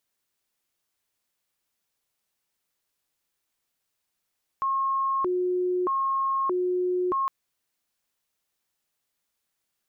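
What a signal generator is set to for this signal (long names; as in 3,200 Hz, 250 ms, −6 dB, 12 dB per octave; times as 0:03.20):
siren hi-lo 362–1,080 Hz 0.8 per second sine −22.5 dBFS 2.66 s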